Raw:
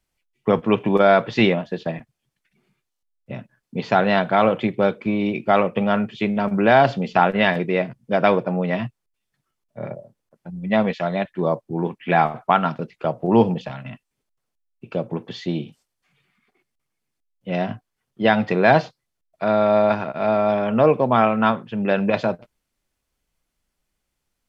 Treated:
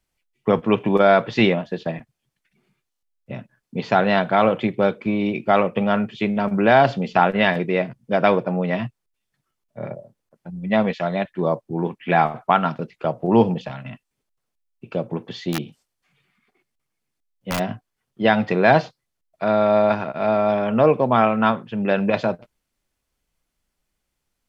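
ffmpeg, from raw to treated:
ffmpeg -i in.wav -filter_complex "[0:a]asplit=3[link_01][link_02][link_03];[link_01]afade=type=out:start_time=15.52:duration=0.02[link_04];[link_02]aeval=exprs='(mod(6.68*val(0)+1,2)-1)/6.68':channel_layout=same,afade=type=in:start_time=15.52:duration=0.02,afade=type=out:start_time=17.58:duration=0.02[link_05];[link_03]afade=type=in:start_time=17.58:duration=0.02[link_06];[link_04][link_05][link_06]amix=inputs=3:normalize=0" out.wav

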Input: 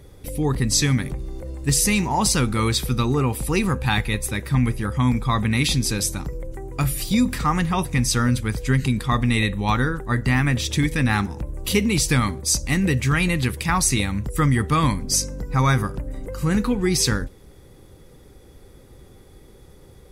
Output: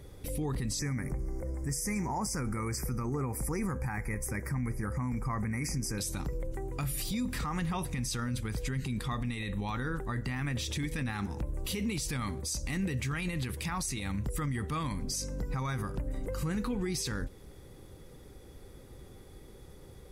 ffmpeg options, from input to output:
ffmpeg -i in.wav -filter_complex "[0:a]asettb=1/sr,asplit=3[link_01][link_02][link_03];[link_01]atrim=end=0.794[link_04];[link_02]atrim=start=0.79:end=5.98,asetpts=PTS-STARTPTS,afade=type=in:duration=0.004:curve=qsin,afade=type=out:start_time=5.186:duration=0.004:curve=qsin,asuperstop=centerf=3400:order=12:qfactor=1.3[link_05];[link_03]atrim=start=5.976[link_06];[link_04][link_05]acrossfade=duration=0.004:curve1=hsin:curve2=qsin[link_07];[link_07][link_06]acrossfade=duration=0.004:curve1=qsin:curve2=hsin,acompressor=threshold=-26dB:ratio=2,alimiter=limit=-22dB:level=0:latency=1:release=23,volume=-3.5dB" out.wav

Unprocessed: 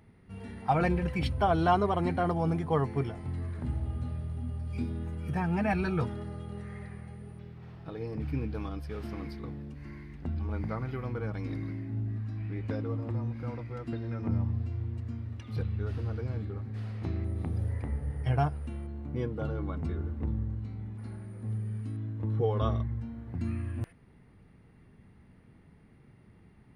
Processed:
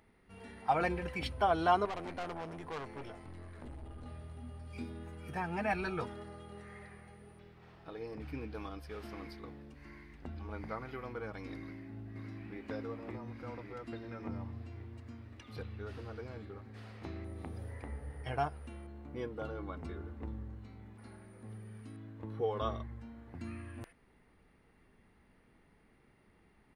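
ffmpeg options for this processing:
ffmpeg -i in.wav -filter_complex "[0:a]asettb=1/sr,asplit=3[link_01][link_02][link_03];[link_01]atrim=end=1.854[link_04];[link_02]atrim=start=1.85:end=4.06,asetpts=PTS-STARTPTS,afade=type=in:duration=0.004:curve=qsin,afade=type=out:start_time=2.206:duration=0.004:curve=qsin,aeval=exprs='(tanh(44.7*val(0)+0.2)-tanh(0.2))/44.7':channel_layout=same[link_05];[link_03]atrim=start=4.056[link_06];[link_04][link_05]acrossfade=duration=0.004:curve1=hsin:curve2=qsin[link_07];[link_07][link_06]acrossfade=duration=0.004:curve1=qsin:curve2=hsin,asplit=2[link_08][link_09];[link_09]afade=type=in:start_time=11.59:duration=0.01,afade=type=out:start_time=12.61:duration=0.01,aecho=0:1:560|1120|1680|2240|2800|3360|3920|4480|5040|5600:0.707946|0.460165|0.299107|0.19442|0.126373|0.0821423|0.0533925|0.0347051|0.0225583|0.0146629[link_10];[link_08][link_10]amix=inputs=2:normalize=0,equalizer=frequency=120:width=0.66:gain=-14,volume=-1.5dB" out.wav

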